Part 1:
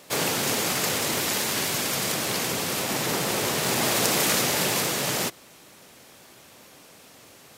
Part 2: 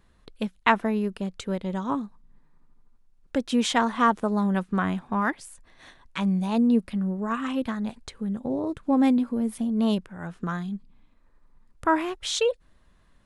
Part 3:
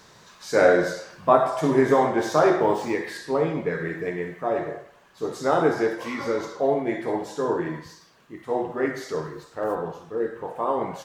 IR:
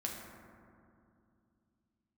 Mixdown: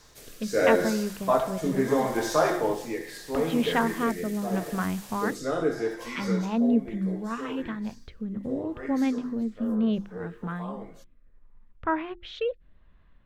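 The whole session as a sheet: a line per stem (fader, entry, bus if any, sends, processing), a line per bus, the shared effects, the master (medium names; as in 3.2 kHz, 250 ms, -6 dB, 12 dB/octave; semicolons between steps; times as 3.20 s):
-16.5 dB, 0.05 s, no send, auto duck -7 dB, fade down 0.30 s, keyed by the second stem
-3.0 dB, 0.00 s, no send, low-pass 3.1 kHz 24 dB/octave; bass shelf 140 Hz +7.5 dB
6.26 s -2 dB -> 6.57 s -10 dB, 0.00 s, no send, comb of notches 190 Hz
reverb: none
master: hum notches 50/100/150/200/250/300/350 Hz; rotary cabinet horn 0.75 Hz; treble shelf 5.2 kHz +9.5 dB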